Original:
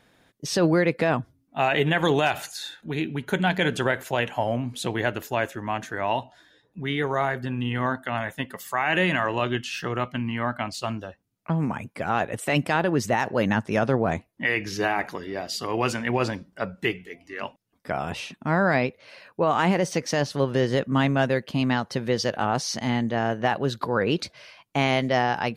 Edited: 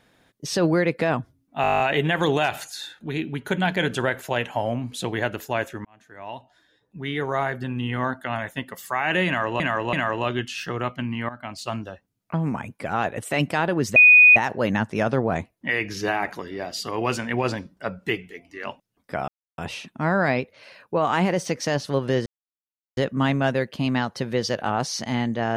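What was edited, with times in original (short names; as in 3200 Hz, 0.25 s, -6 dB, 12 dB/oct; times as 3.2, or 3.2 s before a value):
1.62 stutter 0.02 s, 10 plays
5.67–7.2 fade in
9.09–9.42 loop, 3 plays
10.45–10.86 fade in, from -14.5 dB
13.12 add tone 2480 Hz -8 dBFS 0.40 s
18.04 insert silence 0.30 s
20.72 insert silence 0.71 s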